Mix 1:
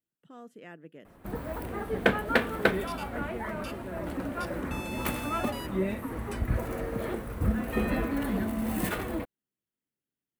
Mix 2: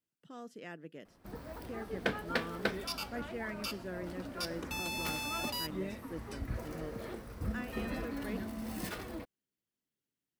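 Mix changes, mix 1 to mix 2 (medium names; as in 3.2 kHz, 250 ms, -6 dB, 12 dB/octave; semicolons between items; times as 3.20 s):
first sound -10.0 dB; second sound: remove low-pass 11 kHz; master: add peaking EQ 5.1 kHz +12 dB 0.79 oct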